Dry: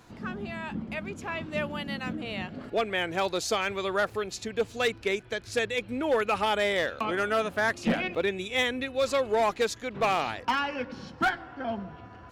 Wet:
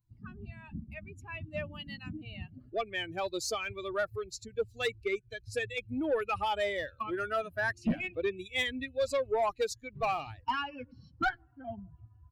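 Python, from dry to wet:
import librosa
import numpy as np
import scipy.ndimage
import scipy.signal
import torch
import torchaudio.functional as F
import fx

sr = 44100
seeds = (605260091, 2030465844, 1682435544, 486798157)

y = fx.bin_expand(x, sr, power=2.0)
y = fx.low_shelf(y, sr, hz=130.0, db=10.0)
y = 10.0 ** (-22.0 / 20.0) * np.tanh(y / 10.0 ** (-22.0 / 20.0))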